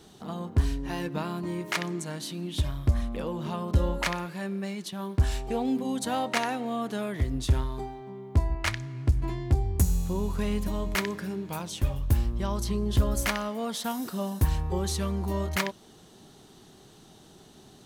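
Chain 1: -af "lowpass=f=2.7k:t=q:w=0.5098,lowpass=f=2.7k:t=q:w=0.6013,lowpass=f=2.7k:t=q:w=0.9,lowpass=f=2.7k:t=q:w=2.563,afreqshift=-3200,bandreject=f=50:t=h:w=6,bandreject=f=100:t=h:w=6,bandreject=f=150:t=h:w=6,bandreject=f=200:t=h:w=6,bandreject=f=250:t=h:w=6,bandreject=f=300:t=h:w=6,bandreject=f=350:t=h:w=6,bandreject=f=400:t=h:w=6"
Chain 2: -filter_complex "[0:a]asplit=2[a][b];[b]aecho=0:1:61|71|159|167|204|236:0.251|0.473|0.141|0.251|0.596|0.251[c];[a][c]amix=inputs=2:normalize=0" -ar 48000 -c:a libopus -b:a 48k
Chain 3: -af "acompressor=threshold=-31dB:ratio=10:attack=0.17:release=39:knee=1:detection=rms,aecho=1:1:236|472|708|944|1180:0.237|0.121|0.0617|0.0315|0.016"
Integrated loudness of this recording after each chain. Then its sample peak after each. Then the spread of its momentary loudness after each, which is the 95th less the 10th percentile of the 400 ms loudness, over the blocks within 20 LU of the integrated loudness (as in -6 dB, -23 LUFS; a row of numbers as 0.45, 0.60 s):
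-25.0, -27.5, -37.5 LUFS; -10.5, -11.0, -26.5 dBFS; 9, 6, 10 LU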